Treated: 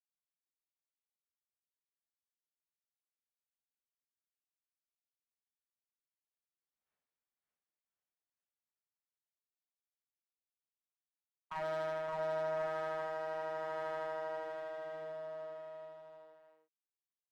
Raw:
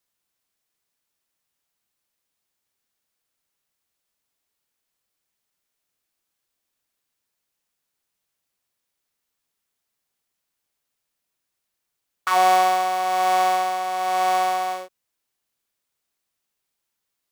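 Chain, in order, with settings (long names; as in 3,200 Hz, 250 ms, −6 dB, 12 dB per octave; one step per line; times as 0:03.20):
source passing by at 0:06.93, 59 m/s, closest 4.3 metres
noise gate with hold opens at −46 dBFS
low-pass filter 1,900 Hz 12 dB per octave
low-shelf EQ 250 Hz −5.5 dB
in parallel at +1 dB: speech leveller
on the sum: asymmetric clip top −53.5 dBFS
on a send: bouncing-ball delay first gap 570 ms, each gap 0.85×, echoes 5
on the sum: level +13 dB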